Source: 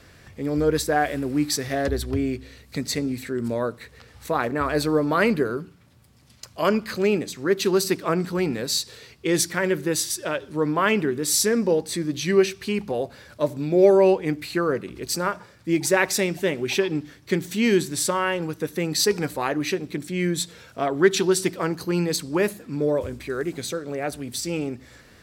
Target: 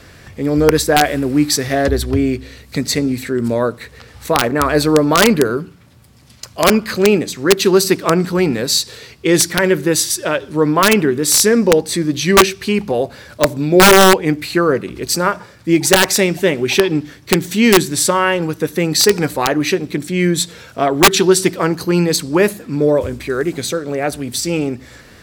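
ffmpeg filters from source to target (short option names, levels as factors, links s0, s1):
-af "aeval=exprs='(mod(3.35*val(0)+1,2)-1)/3.35':c=same,volume=2.82"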